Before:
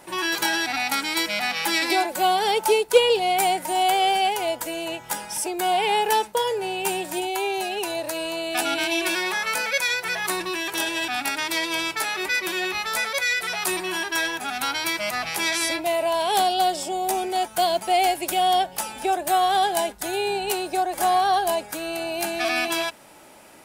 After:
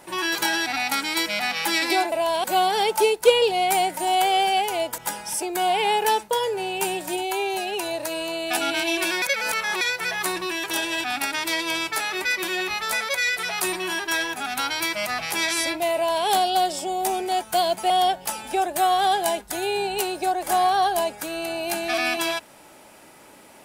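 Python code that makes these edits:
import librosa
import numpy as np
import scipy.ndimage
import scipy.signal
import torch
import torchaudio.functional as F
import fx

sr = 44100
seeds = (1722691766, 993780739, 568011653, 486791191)

y = fx.edit(x, sr, fx.cut(start_s=4.66, length_s=0.36),
    fx.reverse_span(start_s=9.26, length_s=0.59),
    fx.duplicate(start_s=15.98, length_s=0.32, to_s=2.12),
    fx.cut(start_s=17.94, length_s=0.47), tone=tone)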